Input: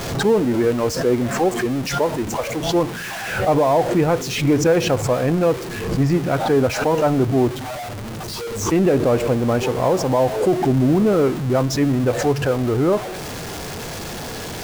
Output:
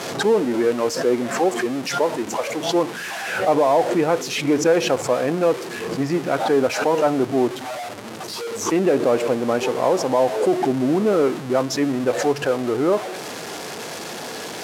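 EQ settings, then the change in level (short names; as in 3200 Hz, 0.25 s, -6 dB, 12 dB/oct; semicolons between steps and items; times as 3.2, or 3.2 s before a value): HPF 260 Hz 12 dB/oct; Bessel low-pass 12000 Hz, order 8; 0.0 dB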